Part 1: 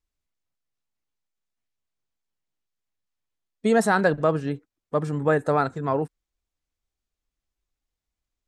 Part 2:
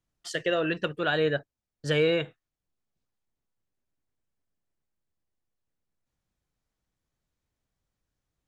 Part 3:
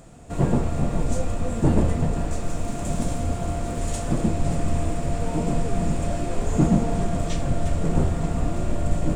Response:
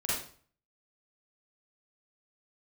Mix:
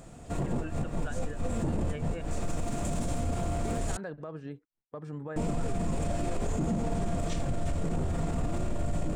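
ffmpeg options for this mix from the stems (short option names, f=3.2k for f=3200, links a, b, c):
-filter_complex "[0:a]agate=range=-11dB:threshold=-39dB:ratio=16:detection=peak,highshelf=f=6.6k:g=-11.5,alimiter=limit=-19.5dB:level=0:latency=1:release=117,volume=-11dB[a];[1:a]lowpass=2.1k,alimiter=level_in=2dB:limit=-24dB:level=0:latency=1,volume=-2dB,aeval=exprs='val(0)*pow(10,-26*(0.5-0.5*cos(2*PI*4.6*n/s))/20)':c=same,volume=-3.5dB,asplit=2[b][c];[2:a]volume=-1.5dB,asplit=3[d][e][f];[d]atrim=end=3.97,asetpts=PTS-STARTPTS,afade=t=out:st=3.966:d=0.004:c=hsin[g];[e]atrim=start=3.97:end=5.36,asetpts=PTS-STARTPTS,volume=0[h];[f]atrim=start=5.36,asetpts=PTS-STARTPTS,afade=t=in:d=0.004:c=hsin[i];[g][h][i]concat=n=3:v=0:a=1[j];[c]apad=whole_len=403928[k];[j][k]sidechaincompress=threshold=-52dB:ratio=8:attack=25:release=111[l];[a][b][l]amix=inputs=3:normalize=0,alimiter=limit=-22.5dB:level=0:latency=1:release=29"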